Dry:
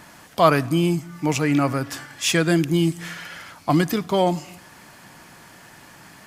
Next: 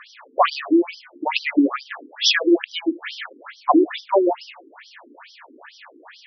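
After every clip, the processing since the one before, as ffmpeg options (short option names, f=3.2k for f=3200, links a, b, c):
-af "bandreject=f=102.1:t=h:w=4,bandreject=f=204.2:t=h:w=4,bandreject=f=306.3:t=h:w=4,bandreject=f=408.4:t=h:w=4,bandreject=f=510.5:t=h:w=4,bandreject=f=612.6:t=h:w=4,bandreject=f=714.7:t=h:w=4,bandreject=f=816.8:t=h:w=4,bandreject=f=918.9:t=h:w=4,bandreject=f=1.021k:t=h:w=4,bandreject=f=1.1231k:t=h:w=4,bandreject=f=1.2252k:t=h:w=4,bandreject=f=1.3273k:t=h:w=4,bandreject=f=1.4294k:t=h:w=4,bandreject=f=1.5315k:t=h:w=4,bandreject=f=1.6336k:t=h:w=4,bandreject=f=1.7357k:t=h:w=4,bandreject=f=1.8378k:t=h:w=4,aeval=exprs='0.794*sin(PI/2*1.78*val(0)/0.794)':c=same,afftfilt=real='re*between(b*sr/1024,310*pow(4300/310,0.5+0.5*sin(2*PI*2.3*pts/sr))/1.41,310*pow(4300/310,0.5+0.5*sin(2*PI*2.3*pts/sr))*1.41)':imag='im*between(b*sr/1024,310*pow(4300/310,0.5+0.5*sin(2*PI*2.3*pts/sr))/1.41,310*pow(4300/310,0.5+0.5*sin(2*PI*2.3*pts/sr))*1.41)':win_size=1024:overlap=0.75"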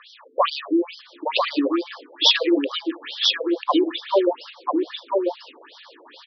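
-af "highpass=380,equalizer=f=500:t=q:w=4:g=7,equalizer=f=730:t=q:w=4:g=-9,equalizer=f=1.5k:t=q:w=4:g=-8,equalizer=f=2.1k:t=q:w=4:g=-10,equalizer=f=3.7k:t=q:w=4:g=6,lowpass=f=5.1k:w=0.5412,lowpass=f=5.1k:w=1.3066,aecho=1:1:992:0.668"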